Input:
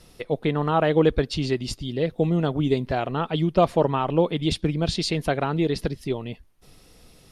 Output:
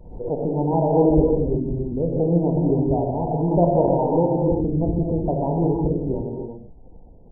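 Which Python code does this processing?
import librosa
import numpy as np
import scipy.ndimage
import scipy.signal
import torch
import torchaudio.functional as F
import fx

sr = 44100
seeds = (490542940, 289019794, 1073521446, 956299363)

y = fx.brickwall_lowpass(x, sr, high_hz=1000.0)
y = fx.low_shelf(y, sr, hz=62.0, db=8.5)
y = fx.rev_gated(y, sr, seeds[0], gate_ms=380, shape='flat', drr_db=-1.0)
y = fx.pre_swell(y, sr, db_per_s=72.0)
y = y * librosa.db_to_amplitude(-1.5)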